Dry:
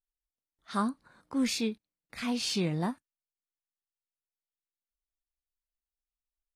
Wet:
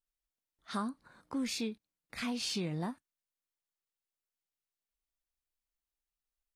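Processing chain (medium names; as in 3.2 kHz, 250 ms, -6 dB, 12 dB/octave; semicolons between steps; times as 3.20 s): compression 3:1, threshold -34 dBFS, peak gain reduction 7.5 dB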